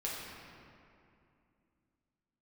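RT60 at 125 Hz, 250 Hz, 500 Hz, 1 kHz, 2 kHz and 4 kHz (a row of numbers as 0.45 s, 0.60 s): 3.2 s, 3.4 s, 2.7 s, 2.5 s, 2.2 s, 1.5 s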